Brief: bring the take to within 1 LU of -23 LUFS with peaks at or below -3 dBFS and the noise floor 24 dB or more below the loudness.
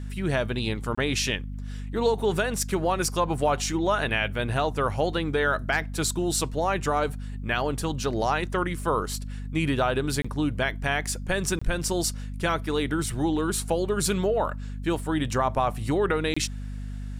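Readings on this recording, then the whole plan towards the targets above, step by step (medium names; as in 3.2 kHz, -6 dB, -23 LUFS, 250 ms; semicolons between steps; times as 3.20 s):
dropouts 4; longest dropout 25 ms; hum 50 Hz; highest harmonic 250 Hz; hum level -32 dBFS; loudness -26.5 LUFS; peak level -11.5 dBFS; loudness target -23.0 LUFS
-> interpolate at 0.95/10.22/11.59/16.34 s, 25 ms; de-hum 50 Hz, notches 5; trim +3.5 dB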